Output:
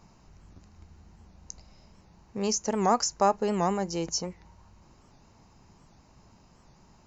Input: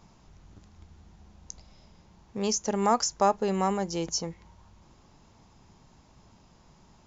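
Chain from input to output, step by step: notch 3400 Hz, Q 5.6; record warp 78 rpm, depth 160 cents

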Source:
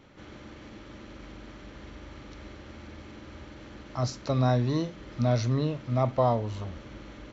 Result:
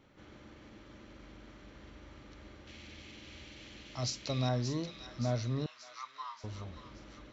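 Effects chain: 2.67–4.49 resonant high shelf 1900 Hz +9.5 dB, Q 1.5; 5.66–6.44 steep high-pass 1000 Hz 72 dB/oct; thin delay 0.578 s, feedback 54%, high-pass 1500 Hz, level -7.5 dB; gain -8 dB

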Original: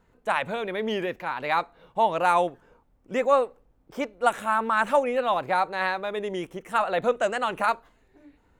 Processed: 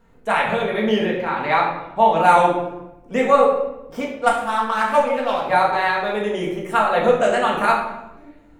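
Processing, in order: 0.98–2.17 high shelf 7900 Hz -10.5 dB; 4–5.46 power-law curve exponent 1.4; shoebox room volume 320 m³, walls mixed, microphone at 1.7 m; gain +2.5 dB

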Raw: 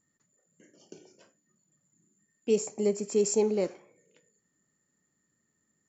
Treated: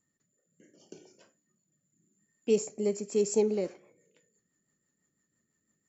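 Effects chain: rotary speaker horn 0.7 Hz, later 6 Hz, at 2.43

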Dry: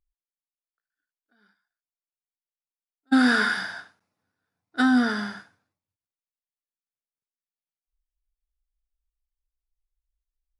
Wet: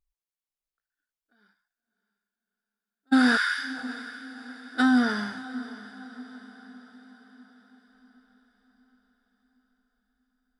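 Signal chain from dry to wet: 3.37–3.77 HPF 1300 Hz 24 dB/oct; diffused feedback echo 0.623 s, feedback 52%, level -15 dB; gain -1 dB

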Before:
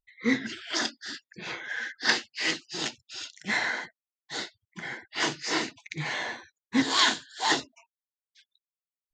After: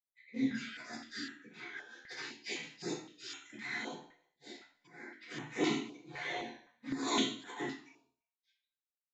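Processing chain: gate -55 dBFS, range -14 dB; high shelf 7900 Hz +3.5 dB, from 5.19 s -6 dB; auto swell 0.346 s; envelope flanger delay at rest 8.7 ms, full sweep at -31 dBFS; doubler 14 ms -7 dB; speakerphone echo 80 ms, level -12 dB; reverb, pre-delay 76 ms; stepped notch 3.9 Hz 230–4800 Hz; gain +5.5 dB

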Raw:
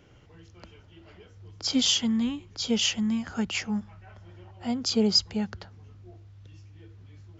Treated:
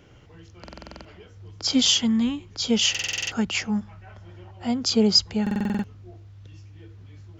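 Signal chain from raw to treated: stuck buffer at 0.63/2.9/5.42, samples 2048, times 8; gain +4 dB

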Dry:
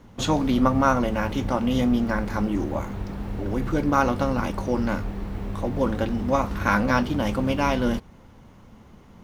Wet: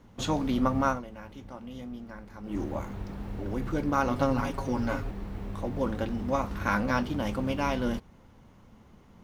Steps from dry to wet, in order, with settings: 0.87–2.58 dip -13 dB, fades 0.15 s; 4.1–5.11 comb 7.3 ms, depth 85%; gain -6 dB

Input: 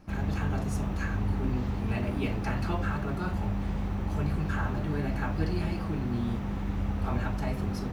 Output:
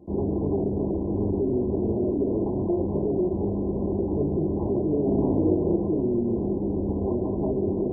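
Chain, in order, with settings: bell 3900 Hz +4 dB 0.4 oct; notch 900 Hz, Q 7; small resonant body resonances 370/1800 Hz, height 17 dB, ringing for 30 ms; dynamic EQ 320 Hz, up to +5 dB, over -36 dBFS, Q 0.93; limiter -17 dBFS, peak gain reduction 11 dB; HPF 58 Hz 24 dB/oct; 5.01–5.76 flutter echo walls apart 9.3 m, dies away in 1.4 s; MP2 8 kbps 22050 Hz

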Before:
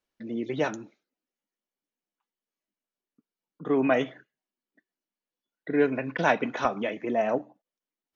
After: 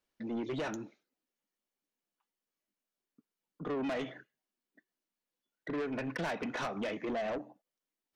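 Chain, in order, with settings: compressor 6:1, threshold -25 dBFS, peak gain reduction 9 dB; soft clip -31.5 dBFS, distortion -8 dB

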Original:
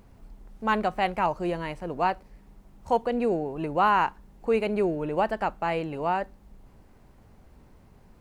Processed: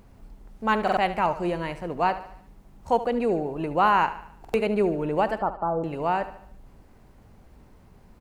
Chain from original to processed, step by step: 5.39–5.84 steep low-pass 1400 Hz 96 dB/oct; feedback echo 73 ms, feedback 48%, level -13.5 dB; stuck buffer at 0.83/4.4, samples 2048, times 2; gain +1.5 dB

